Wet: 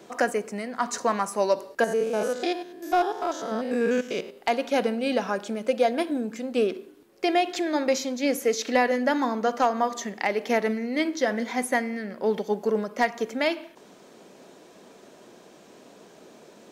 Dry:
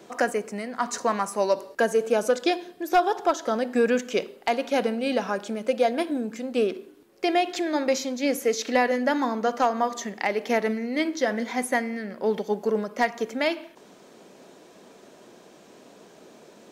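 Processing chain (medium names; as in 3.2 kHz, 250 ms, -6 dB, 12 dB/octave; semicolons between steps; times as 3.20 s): 1.84–4.38 s: spectrogram pixelated in time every 100 ms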